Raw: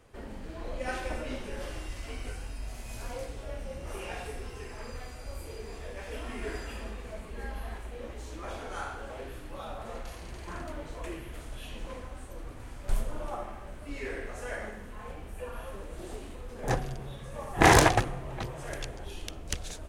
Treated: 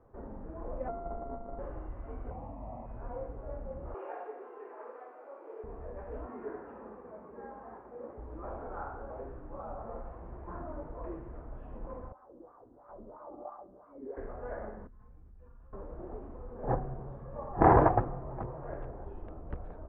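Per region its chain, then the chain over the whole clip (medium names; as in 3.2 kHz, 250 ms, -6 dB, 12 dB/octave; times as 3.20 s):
0.88–1.59 s: sorted samples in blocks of 64 samples + low-pass 1 kHz + peaking EQ 94 Hz -6 dB 2.1 oct
2.30–2.86 s: high-pass 63 Hz + peaking EQ 380 Hz +15 dB 2.6 oct + static phaser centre 1.5 kHz, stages 6
3.94–5.64 s: steep high-pass 320 Hz + treble shelf 2.2 kHz +8.5 dB
6.26–8.18 s: high-pass 170 Hz + tone controls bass -3 dB, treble -13 dB + band-stop 660 Hz, Q 15
12.12–14.17 s: flutter echo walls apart 11.6 m, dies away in 0.83 s + wah-wah 3 Hz 270–1200 Hz, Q 2.9
14.87–15.73 s: amplifier tone stack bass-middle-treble 6-0-2 + level flattener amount 70%
whole clip: inverse Chebyshev low-pass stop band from 6.5 kHz, stop band 80 dB; bass shelf 320 Hz -3 dB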